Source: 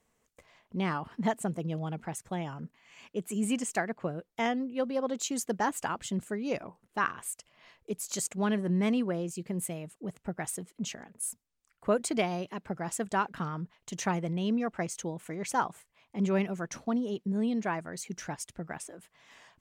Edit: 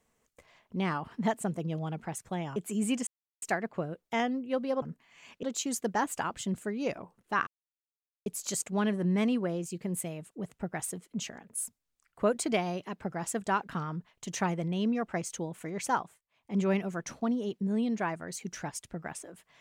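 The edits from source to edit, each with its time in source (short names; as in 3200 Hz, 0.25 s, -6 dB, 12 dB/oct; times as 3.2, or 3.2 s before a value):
2.56–3.17 move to 5.08
3.68 insert silence 0.35 s
7.12–7.91 mute
15.58–16.22 dip -20 dB, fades 0.30 s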